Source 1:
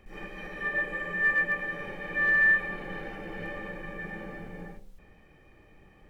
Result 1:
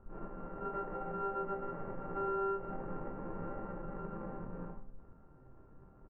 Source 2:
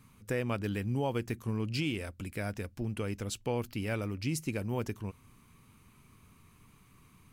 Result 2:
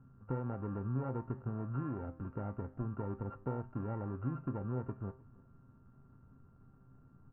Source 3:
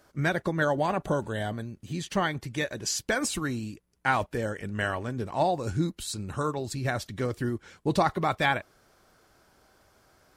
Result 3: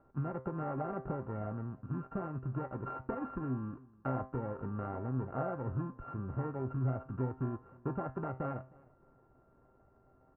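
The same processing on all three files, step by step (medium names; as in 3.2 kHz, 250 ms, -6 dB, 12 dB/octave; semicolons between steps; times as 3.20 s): sorted samples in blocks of 32 samples; Bessel low-pass 900 Hz, order 6; compression 5:1, threshold -34 dBFS; feedback comb 130 Hz, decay 0.34 s, harmonics all, mix 70%; feedback delay 311 ms, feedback 26%, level -24 dB; trim +7.5 dB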